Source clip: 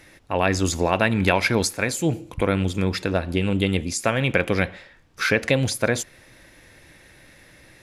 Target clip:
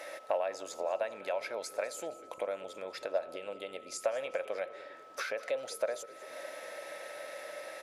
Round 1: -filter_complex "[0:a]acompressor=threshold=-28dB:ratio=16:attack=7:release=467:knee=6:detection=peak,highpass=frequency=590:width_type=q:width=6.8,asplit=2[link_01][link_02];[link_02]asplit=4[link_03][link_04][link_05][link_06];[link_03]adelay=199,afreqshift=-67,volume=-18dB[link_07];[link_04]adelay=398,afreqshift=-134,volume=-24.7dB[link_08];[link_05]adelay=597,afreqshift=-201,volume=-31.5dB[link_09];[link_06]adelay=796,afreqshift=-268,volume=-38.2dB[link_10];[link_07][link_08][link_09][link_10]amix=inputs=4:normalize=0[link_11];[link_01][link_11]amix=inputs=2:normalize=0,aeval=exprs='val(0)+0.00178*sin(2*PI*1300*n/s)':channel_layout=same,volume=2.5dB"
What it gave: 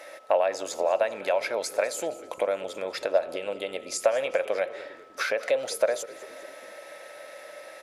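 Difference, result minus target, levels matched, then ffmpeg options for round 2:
downward compressor: peak gain reduction −9.5 dB
-filter_complex "[0:a]acompressor=threshold=-38dB:ratio=16:attack=7:release=467:knee=6:detection=peak,highpass=frequency=590:width_type=q:width=6.8,asplit=2[link_01][link_02];[link_02]asplit=4[link_03][link_04][link_05][link_06];[link_03]adelay=199,afreqshift=-67,volume=-18dB[link_07];[link_04]adelay=398,afreqshift=-134,volume=-24.7dB[link_08];[link_05]adelay=597,afreqshift=-201,volume=-31.5dB[link_09];[link_06]adelay=796,afreqshift=-268,volume=-38.2dB[link_10];[link_07][link_08][link_09][link_10]amix=inputs=4:normalize=0[link_11];[link_01][link_11]amix=inputs=2:normalize=0,aeval=exprs='val(0)+0.00178*sin(2*PI*1300*n/s)':channel_layout=same,volume=2.5dB"

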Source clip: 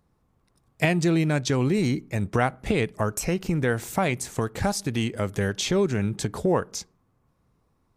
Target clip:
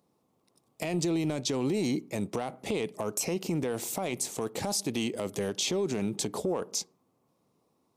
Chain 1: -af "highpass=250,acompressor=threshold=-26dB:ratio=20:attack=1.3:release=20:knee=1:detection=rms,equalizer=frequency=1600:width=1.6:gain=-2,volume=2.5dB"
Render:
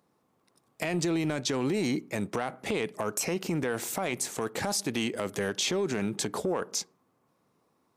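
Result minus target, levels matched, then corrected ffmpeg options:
2,000 Hz band +5.0 dB
-af "highpass=250,acompressor=threshold=-26dB:ratio=20:attack=1.3:release=20:knee=1:detection=rms,equalizer=frequency=1600:width=1.6:gain=-12.5,volume=2.5dB"

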